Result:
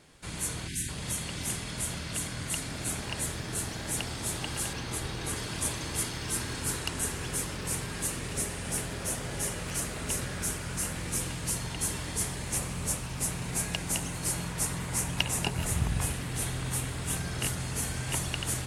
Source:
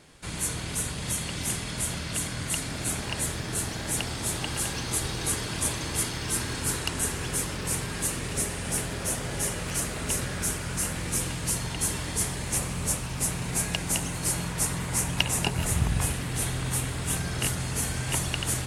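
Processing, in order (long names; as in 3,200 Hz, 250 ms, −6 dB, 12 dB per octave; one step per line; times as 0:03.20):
0:00.68–0:00.89: gain on a spectral selection 400–1,500 Hz −24 dB
0:04.73–0:05.36: bass and treble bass 0 dB, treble −5 dB
surface crackle 37 per second −52 dBFS
level −3.5 dB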